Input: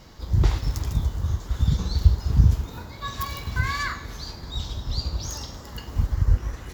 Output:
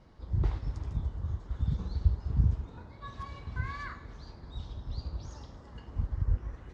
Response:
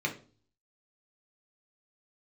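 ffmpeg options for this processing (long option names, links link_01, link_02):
-af "lowpass=frequency=1300:poles=1,volume=-9dB" -ar 22050 -c:a nellymoser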